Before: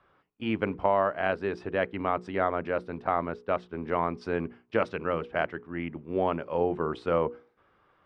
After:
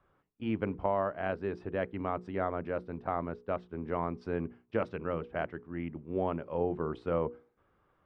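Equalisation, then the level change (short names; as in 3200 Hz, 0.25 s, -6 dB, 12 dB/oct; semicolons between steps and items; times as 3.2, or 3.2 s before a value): tilt -2 dB/oct; -7.0 dB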